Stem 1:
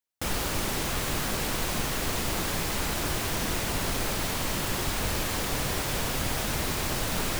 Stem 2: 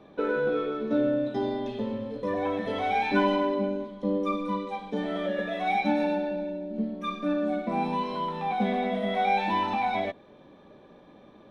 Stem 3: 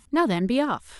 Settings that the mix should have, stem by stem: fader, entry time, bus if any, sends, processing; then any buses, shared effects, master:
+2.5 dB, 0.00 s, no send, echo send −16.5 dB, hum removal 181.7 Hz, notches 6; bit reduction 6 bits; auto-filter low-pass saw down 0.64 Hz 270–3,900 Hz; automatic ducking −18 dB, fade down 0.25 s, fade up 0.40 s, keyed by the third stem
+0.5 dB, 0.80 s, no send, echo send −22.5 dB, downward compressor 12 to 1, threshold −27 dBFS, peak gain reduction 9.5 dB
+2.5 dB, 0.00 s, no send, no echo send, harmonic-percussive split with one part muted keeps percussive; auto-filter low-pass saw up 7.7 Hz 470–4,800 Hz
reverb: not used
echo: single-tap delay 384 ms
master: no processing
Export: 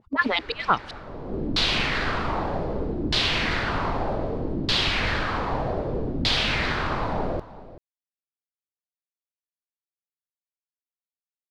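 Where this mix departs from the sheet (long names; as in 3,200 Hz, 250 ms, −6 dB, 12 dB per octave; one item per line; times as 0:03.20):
stem 2: muted
master: extra parametric band 4,400 Hz +11 dB 0.9 octaves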